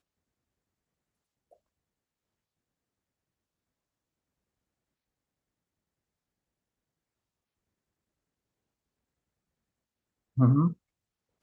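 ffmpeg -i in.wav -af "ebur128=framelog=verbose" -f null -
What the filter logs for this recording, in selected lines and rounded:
Integrated loudness:
  I:         -25.9 LUFS
  Threshold: -38.2 LUFS
Loudness range:
  LRA:        14.1 LU
  Threshold: -52.9 LUFS
  LRA low:   -46.3 LUFS
  LRA high:  -32.2 LUFS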